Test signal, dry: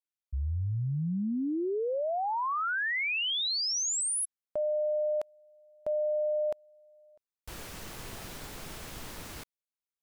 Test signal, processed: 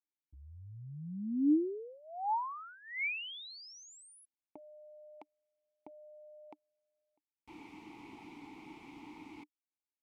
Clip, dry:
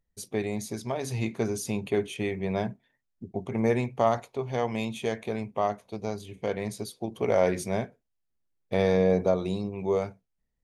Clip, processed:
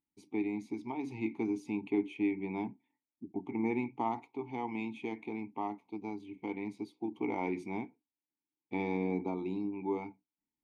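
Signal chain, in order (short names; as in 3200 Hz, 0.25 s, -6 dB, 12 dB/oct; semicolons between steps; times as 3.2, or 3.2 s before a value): vowel filter u; gain +6.5 dB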